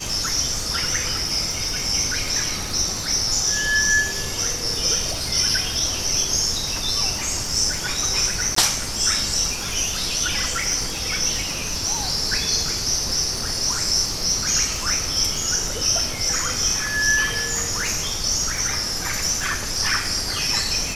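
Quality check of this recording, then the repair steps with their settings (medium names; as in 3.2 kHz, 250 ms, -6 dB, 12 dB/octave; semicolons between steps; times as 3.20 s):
crackle 49 per s -27 dBFS
8.55–8.56 s: dropout 14 ms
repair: de-click; interpolate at 8.55 s, 14 ms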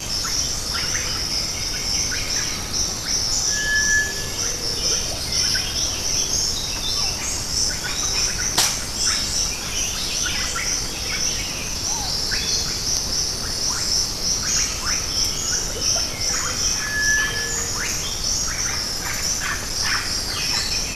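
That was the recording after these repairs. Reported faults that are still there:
nothing left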